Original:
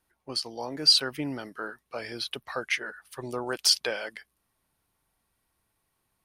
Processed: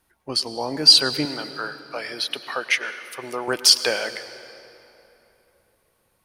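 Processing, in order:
0:01.25–0:03.48: high-pass filter 630 Hz 6 dB per octave
convolution reverb RT60 3.3 s, pre-delay 93 ms, DRR 12.5 dB
level +7.5 dB

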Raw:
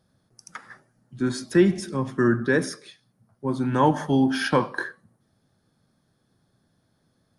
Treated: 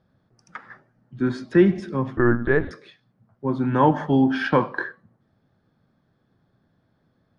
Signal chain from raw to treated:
low-pass filter 2,700 Hz 12 dB per octave
0:02.17–0:02.71: linear-prediction vocoder at 8 kHz pitch kept
level +2 dB

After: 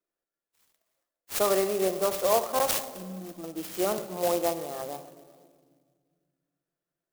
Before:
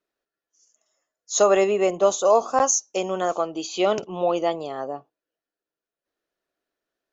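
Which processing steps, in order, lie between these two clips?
gain on a spectral selection 0:02.75–0:03.44, 350–5,000 Hz −24 dB
convolution reverb RT60 1.8 s, pre-delay 6 ms, DRR 7.5 dB
converter with an unsteady clock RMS 0.083 ms
level −6.5 dB

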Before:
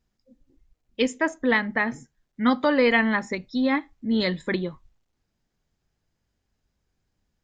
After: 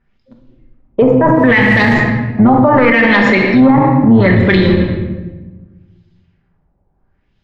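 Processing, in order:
sub-octave generator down 1 octave, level −5 dB
0:02.55–0:03.42: Butterworth high-pass 190 Hz 96 dB per octave
leveller curve on the samples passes 2
in parallel at −1 dB: output level in coarse steps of 14 dB
0:01.26–0:01.93: on the sum: background noise violet −32 dBFS
auto-filter low-pass sine 0.7 Hz 740–3,800 Hz
rectangular room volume 760 cubic metres, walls mixed, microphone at 1.2 metres
boost into a limiter +11 dB
level −1 dB

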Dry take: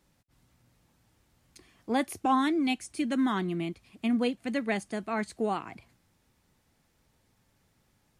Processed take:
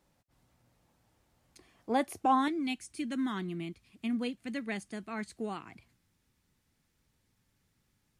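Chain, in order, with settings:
parametric band 680 Hz +5.5 dB 1.5 octaves, from 0:02.48 −6.5 dB
level −4.5 dB

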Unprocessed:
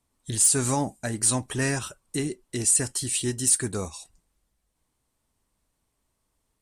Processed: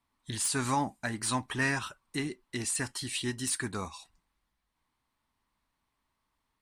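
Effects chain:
octave-band graphic EQ 250/500/1,000/2,000/4,000/8,000 Hz +4/−4/+10/+7/+6/−6 dB
level −8 dB

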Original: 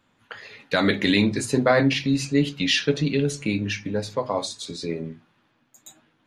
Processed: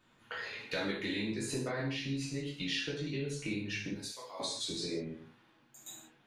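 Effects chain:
0:03.93–0:04.40: first difference
downward compressor 6 to 1, threshold −33 dBFS, peak gain reduction 18 dB
reverb whose tail is shaped and stops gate 200 ms falling, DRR −4.5 dB
level −6 dB

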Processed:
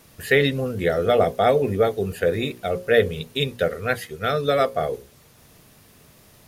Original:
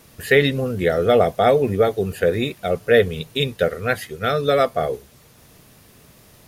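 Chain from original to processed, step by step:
mains-hum notches 60/120/180/240/300/360/420/480/540 Hz
level −2 dB

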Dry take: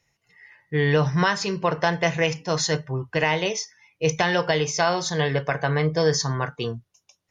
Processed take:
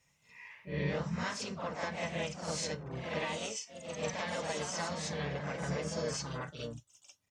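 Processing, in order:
high-shelf EQ 5,100 Hz +4.5 dB
downward compressor 2 to 1, threshold −41 dBFS, peak gain reduction 14 dB
notch comb filter 360 Hz
backwards echo 49 ms −5.5 dB
pitch-shifted copies added −12 semitones −12 dB, +4 semitones −5 dB, +5 semitones −16 dB
delay with pitch and tempo change per echo 81 ms, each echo +1 semitone, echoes 2, each echo −6 dB
level −5 dB

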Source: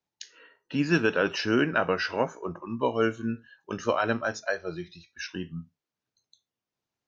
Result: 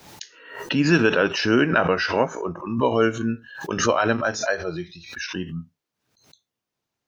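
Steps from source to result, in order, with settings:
background raised ahead of every attack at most 83 dB per second
level +5 dB

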